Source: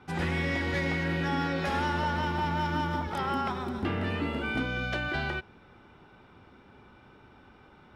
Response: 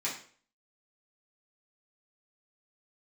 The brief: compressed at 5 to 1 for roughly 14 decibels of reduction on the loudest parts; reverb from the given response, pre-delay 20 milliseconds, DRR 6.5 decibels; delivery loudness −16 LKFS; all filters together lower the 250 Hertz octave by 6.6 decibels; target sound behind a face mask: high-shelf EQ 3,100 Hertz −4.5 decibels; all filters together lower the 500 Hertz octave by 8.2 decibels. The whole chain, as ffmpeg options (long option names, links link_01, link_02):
-filter_complex "[0:a]equalizer=frequency=250:width_type=o:gain=-7.5,equalizer=frequency=500:width_type=o:gain=-8,acompressor=threshold=-45dB:ratio=5,asplit=2[link_01][link_02];[1:a]atrim=start_sample=2205,adelay=20[link_03];[link_02][link_03]afir=irnorm=-1:irlink=0,volume=-12dB[link_04];[link_01][link_04]amix=inputs=2:normalize=0,highshelf=frequency=3100:gain=-4.5,volume=29.5dB"